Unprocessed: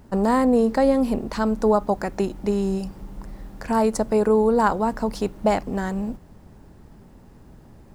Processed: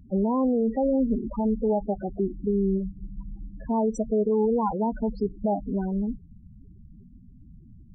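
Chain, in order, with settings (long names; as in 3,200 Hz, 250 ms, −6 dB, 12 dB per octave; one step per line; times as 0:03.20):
dynamic equaliser 1,000 Hz, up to −3 dB, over −29 dBFS, Q 0.71
spectral peaks only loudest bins 8
brickwall limiter −16.5 dBFS, peak gain reduction 6 dB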